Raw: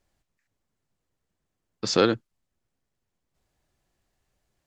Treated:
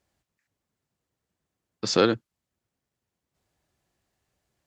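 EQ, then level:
high-pass filter 61 Hz
0.0 dB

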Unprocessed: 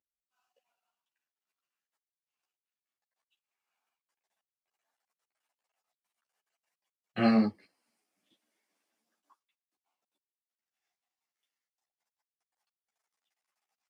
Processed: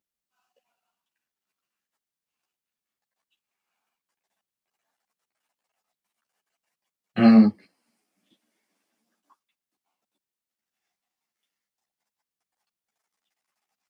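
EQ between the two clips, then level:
parametric band 200 Hz +7 dB 1.1 octaves
+4.5 dB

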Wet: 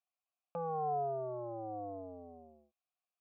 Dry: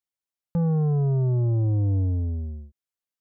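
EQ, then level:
formant filter a
high-pass filter 500 Hz 6 dB per octave
+11.5 dB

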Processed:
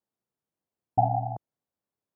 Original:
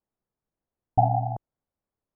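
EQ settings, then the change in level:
high-pass filter 110 Hz 12 dB per octave
−2.0 dB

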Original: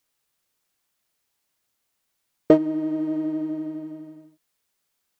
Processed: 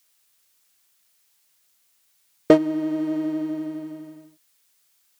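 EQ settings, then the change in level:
parametric band 1,700 Hz +3 dB 2.3 octaves
high-shelf EQ 2,700 Hz +12 dB
0.0 dB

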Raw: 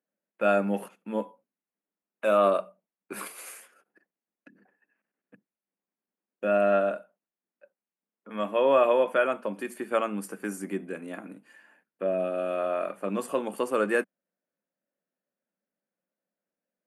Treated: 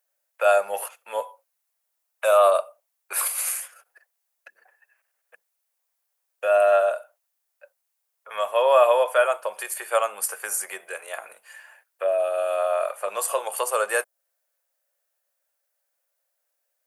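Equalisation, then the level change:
inverse Chebyshev high-pass filter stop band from 290 Hz, stop band 40 dB
dynamic equaliser 2,100 Hz, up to −7 dB, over −43 dBFS, Q 0.81
high-shelf EQ 5,800 Hz +12 dB
+8.5 dB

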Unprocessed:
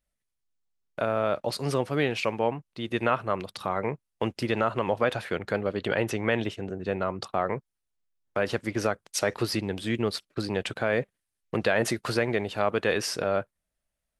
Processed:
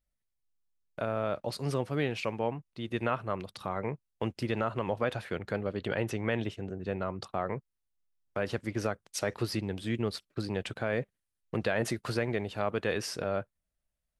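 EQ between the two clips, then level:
low-shelf EQ 190 Hz +7 dB
−6.5 dB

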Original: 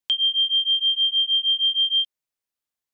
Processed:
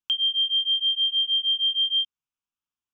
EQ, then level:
high-frequency loss of the air 96 metres
phaser with its sweep stopped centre 2,900 Hz, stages 8
0.0 dB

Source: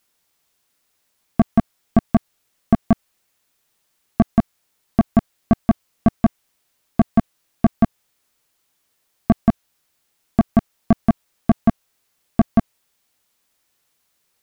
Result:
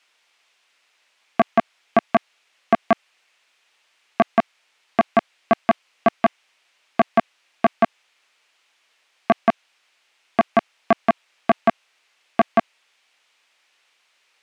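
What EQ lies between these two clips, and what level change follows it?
high-pass filter 570 Hz 12 dB per octave
high-frequency loss of the air 88 metres
parametric band 2,500 Hz +7.5 dB 0.97 octaves
+8.0 dB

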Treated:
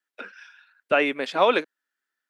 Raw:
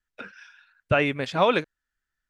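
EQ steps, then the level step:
high-pass filter 260 Hz 24 dB per octave
parametric band 6,500 Hz −3 dB 0.51 octaves
+1.5 dB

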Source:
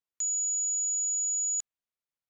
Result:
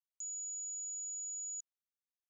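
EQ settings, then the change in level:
resonant band-pass 6,400 Hz, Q 15
high-frequency loss of the air 72 metres
+1.5 dB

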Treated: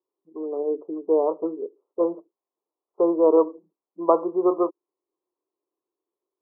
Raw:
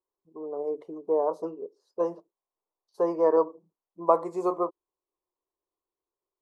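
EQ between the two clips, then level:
high-pass filter 210 Hz 12 dB per octave
linear-phase brick-wall low-pass 1,400 Hz
parametric band 320 Hz +9.5 dB 1.2 octaves
0.0 dB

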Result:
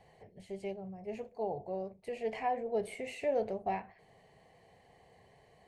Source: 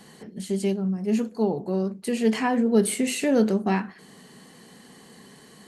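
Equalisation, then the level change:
drawn EQ curve 100 Hz 0 dB, 230 Hz −26 dB, 690 Hz −1 dB, 1,400 Hz −23 dB, 2,200 Hz −8 dB, 3,200 Hz −19 dB, 12,000 Hz −28 dB
0.0 dB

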